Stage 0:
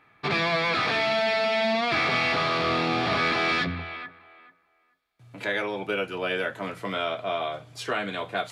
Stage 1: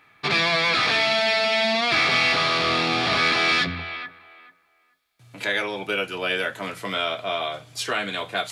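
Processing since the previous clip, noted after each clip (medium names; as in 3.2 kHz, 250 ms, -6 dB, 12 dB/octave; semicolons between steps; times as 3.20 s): treble shelf 2.3 kHz +10.5 dB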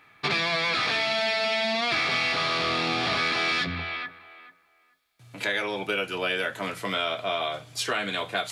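compression 4:1, threshold -23 dBFS, peak gain reduction 6 dB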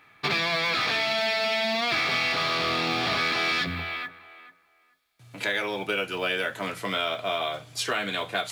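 short-mantissa float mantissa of 4-bit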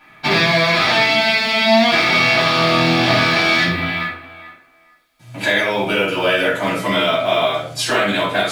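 simulated room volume 420 m³, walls furnished, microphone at 7.8 m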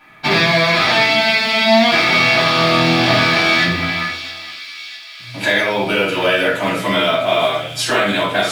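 feedback echo behind a high-pass 656 ms, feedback 66%, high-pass 3.1 kHz, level -10 dB; trim +1 dB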